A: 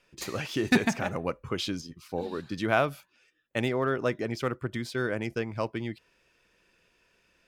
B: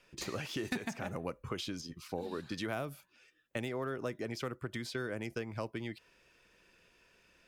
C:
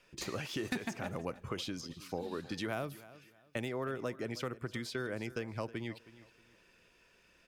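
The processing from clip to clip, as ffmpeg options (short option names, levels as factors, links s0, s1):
-filter_complex "[0:a]acrossover=split=450|7600[s0][s1][s2];[s0]acompressor=threshold=0.00891:ratio=4[s3];[s1]acompressor=threshold=0.00794:ratio=4[s4];[s2]acompressor=threshold=0.00141:ratio=4[s5];[s3][s4][s5]amix=inputs=3:normalize=0,volume=1.12"
-af "aecho=1:1:317|634|951:0.126|0.0365|0.0106"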